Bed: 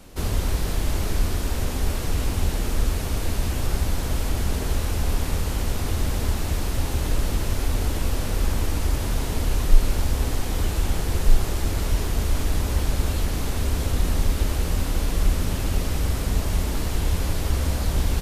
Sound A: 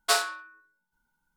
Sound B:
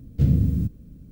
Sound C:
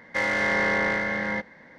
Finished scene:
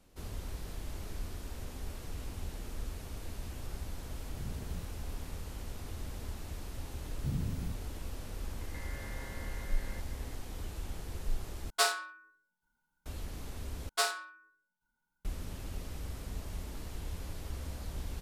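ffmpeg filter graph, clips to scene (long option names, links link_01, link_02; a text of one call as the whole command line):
ffmpeg -i bed.wav -i cue0.wav -i cue1.wav -i cue2.wav -filter_complex "[2:a]asplit=2[link_01][link_02];[1:a]asplit=2[link_03][link_04];[0:a]volume=-17.5dB[link_05];[link_01]acompressor=threshold=-28dB:ratio=6:attack=3.2:release=140:knee=1:detection=peak[link_06];[3:a]acompressor=threshold=-39dB:ratio=6:attack=3.2:release=140:knee=1:detection=peak[link_07];[link_05]asplit=3[link_08][link_09][link_10];[link_08]atrim=end=11.704[link_11];[link_03]atrim=end=1.36,asetpts=PTS-STARTPTS,volume=-4.5dB[link_12];[link_09]atrim=start=13.056:end=13.894[link_13];[link_04]atrim=end=1.36,asetpts=PTS-STARTPTS,volume=-7dB[link_14];[link_10]atrim=start=15.246[link_15];[link_06]atrim=end=1.11,asetpts=PTS-STARTPTS,volume=-13.5dB,afade=type=in:duration=0.004:curve=hsin,afade=type=out:start_time=1.106:duration=0.004:curve=hsin,adelay=4180[link_16];[link_02]atrim=end=1.11,asetpts=PTS-STARTPTS,volume=-16.5dB,afade=type=in:duration=0.004:curve=hsin,afade=type=out:start_time=1.106:duration=0.004:curve=hsin,adelay=7050[link_17];[link_07]atrim=end=1.78,asetpts=PTS-STARTPTS,volume=-9.5dB,afade=type=in:duration=0.004:curve=hsin,afade=type=out:start_time=1.776:duration=0.004:curve=hsin,adelay=8600[link_18];[link_11][link_12]acrossfade=duration=0.004:curve1=hsin:curve2=hsin[link_19];[link_19][link_13]acrossfade=duration=0.004:curve1=hsin:curve2=hsin[link_20];[link_20][link_14]acrossfade=duration=0.004:curve1=hsin:curve2=hsin[link_21];[link_21][link_15]acrossfade=duration=0.004:curve1=hsin:curve2=hsin[link_22];[link_22][link_16][link_17][link_18]amix=inputs=4:normalize=0" out.wav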